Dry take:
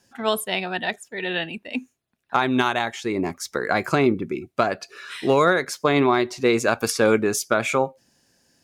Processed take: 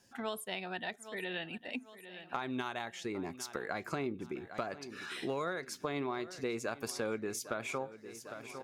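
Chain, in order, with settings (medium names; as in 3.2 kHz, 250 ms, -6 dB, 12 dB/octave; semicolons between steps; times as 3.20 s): feedback delay 803 ms, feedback 50%, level -20 dB; compression 2.5:1, threshold -36 dBFS, peak gain reduction 15 dB; trim -4.5 dB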